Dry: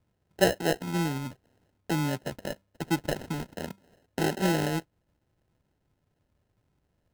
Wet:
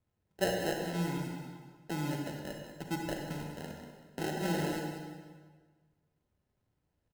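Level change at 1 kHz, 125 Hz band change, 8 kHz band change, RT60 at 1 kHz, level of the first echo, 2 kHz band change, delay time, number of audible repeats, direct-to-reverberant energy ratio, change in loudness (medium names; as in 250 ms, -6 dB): -6.0 dB, -6.0 dB, -6.5 dB, 1.5 s, -10.5 dB, -6.5 dB, 191 ms, 2, 0.5 dB, -6.5 dB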